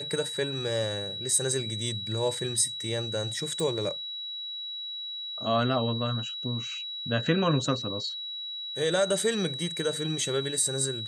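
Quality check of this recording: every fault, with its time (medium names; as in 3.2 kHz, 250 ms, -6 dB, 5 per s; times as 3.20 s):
whine 3.9 kHz -34 dBFS
3.60 s: pop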